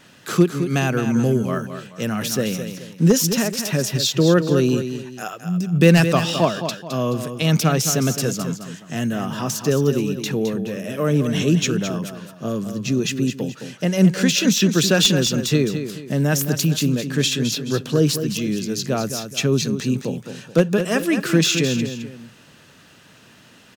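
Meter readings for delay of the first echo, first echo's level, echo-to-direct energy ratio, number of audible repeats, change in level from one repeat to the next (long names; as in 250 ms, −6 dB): 214 ms, −9.0 dB, −8.5 dB, 2, −9.0 dB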